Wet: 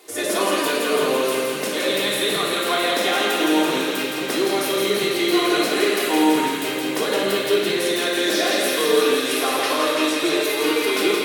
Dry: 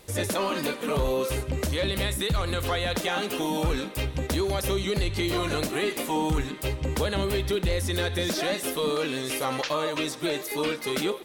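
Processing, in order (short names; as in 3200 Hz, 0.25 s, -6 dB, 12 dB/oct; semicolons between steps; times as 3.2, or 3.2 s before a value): HPF 260 Hz 24 dB/oct; thin delay 0.167 s, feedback 78%, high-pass 1500 Hz, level -4 dB; shoebox room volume 1900 m³, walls mixed, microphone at 3.3 m; gain +1.5 dB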